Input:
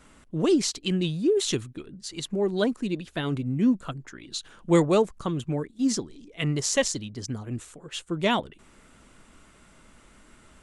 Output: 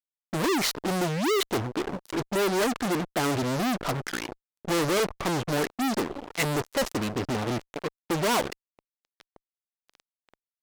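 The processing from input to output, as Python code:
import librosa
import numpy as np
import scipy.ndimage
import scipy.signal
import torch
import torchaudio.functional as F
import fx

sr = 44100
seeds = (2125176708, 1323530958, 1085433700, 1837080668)

y = fx.filter_lfo_lowpass(x, sr, shape='saw_up', hz=1.4, low_hz=480.0, high_hz=2000.0, q=1.3)
y = fx.fuzz(y, sr, gain_db=45.0, gate_db=-44.0)
y = fx.bass_treble(y, sr, bass_db=-8, treble_db=5)
y = F.gain(torch.from_numpy(y), -8.5).numpy()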